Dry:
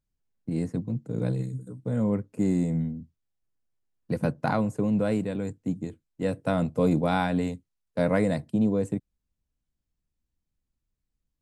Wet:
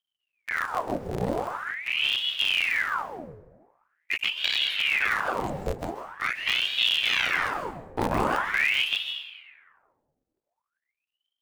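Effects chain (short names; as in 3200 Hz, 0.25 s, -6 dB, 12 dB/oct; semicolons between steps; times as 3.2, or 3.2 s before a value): cycle switcher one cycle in 3, muted; sample leveller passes 1; plate-style reverb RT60 1.3 s, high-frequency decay 0.5×, pre-delay 0.12 s, DRR 5 dB; ring modulator with a swept carrier 1700 Hz, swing 85%, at 0.44 Hz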